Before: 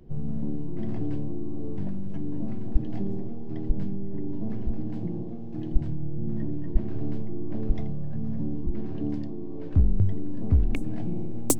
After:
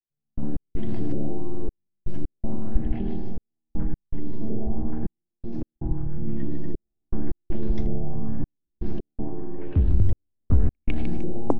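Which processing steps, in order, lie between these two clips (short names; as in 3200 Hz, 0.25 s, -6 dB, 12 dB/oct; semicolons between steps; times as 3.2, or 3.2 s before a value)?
feedback echo 0.152 s, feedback 50%, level -6 dB; reverb RT60 0.45 s, pre-delay 88 ms, DRR 7.5 dB; LFO low-pass saw up 0.89 Hz 490–6600 Hz; step gate "..x.xxxxx" 80 bpm -60 dB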